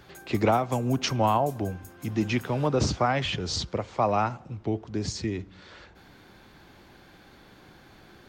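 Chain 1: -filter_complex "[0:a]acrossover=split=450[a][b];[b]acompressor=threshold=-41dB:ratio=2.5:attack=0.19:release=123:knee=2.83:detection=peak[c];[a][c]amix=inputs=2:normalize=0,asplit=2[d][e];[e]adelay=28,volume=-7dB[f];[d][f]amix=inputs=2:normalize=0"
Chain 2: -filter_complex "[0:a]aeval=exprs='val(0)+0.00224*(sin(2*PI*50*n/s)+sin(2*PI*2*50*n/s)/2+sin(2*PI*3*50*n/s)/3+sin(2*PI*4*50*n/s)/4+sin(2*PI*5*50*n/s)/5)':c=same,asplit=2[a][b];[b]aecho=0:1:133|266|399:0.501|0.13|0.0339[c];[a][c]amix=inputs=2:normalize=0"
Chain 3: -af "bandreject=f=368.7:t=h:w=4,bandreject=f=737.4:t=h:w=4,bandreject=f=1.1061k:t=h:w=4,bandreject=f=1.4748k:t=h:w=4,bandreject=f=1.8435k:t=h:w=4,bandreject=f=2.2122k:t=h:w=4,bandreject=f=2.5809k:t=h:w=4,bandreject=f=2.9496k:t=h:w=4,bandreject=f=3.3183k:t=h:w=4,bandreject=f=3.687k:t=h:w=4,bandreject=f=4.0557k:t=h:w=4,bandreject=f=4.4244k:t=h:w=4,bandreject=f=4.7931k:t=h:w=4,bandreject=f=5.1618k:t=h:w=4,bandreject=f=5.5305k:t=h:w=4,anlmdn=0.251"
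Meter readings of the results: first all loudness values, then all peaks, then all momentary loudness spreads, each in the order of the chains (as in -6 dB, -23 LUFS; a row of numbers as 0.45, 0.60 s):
-30.0, -26.5, -27.5 LUFS; -12.0, -11.0, -11.0 dBFS; 9, 9, 9 LU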